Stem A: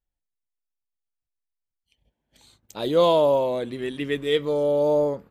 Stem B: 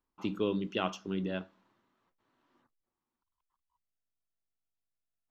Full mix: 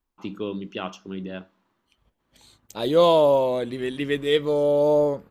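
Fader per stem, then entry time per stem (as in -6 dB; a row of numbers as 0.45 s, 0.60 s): +1.5 dB, +1.0 dB; 0.00 s, 0.00 s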